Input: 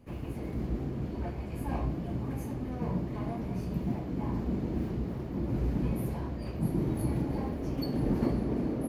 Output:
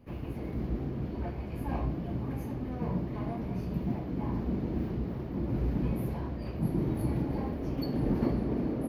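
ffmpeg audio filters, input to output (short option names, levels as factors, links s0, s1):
-af "equalizer=f=8100:t=o:w=0.59:g=-14.5"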